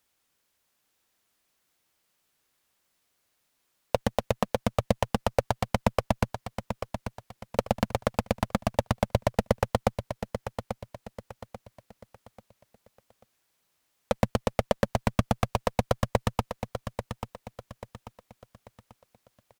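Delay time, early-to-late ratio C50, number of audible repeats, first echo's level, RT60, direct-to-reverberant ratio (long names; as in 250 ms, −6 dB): 839 ms, no reverb audible, 3, −9.0 dB, no reverb audible, no reverb audible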